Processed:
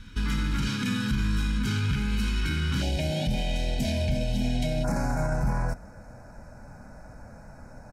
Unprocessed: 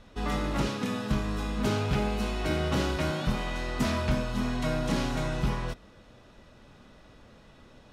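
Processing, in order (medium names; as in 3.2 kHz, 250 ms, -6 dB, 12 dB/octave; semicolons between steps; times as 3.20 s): comb 1.3 ms, depth 62%; peak limiter -24.5 dBFS, peak gain reduction 11 dB; Butterworth band-stop 670 Hz, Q 0.83, from 2.81 s 1.2 kHz, from 4.83 s 3.3 kHz; trim +6.5 dB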